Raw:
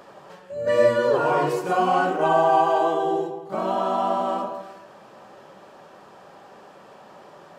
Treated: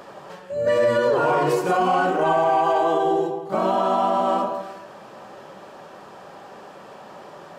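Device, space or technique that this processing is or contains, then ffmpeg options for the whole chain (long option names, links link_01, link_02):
soft clipper into limiter: -af "asoftclip=type=tanh:threshold=-8.5dB,alimiter=limit=-17dB:level=0:latency=1:release=65,volume=5dB"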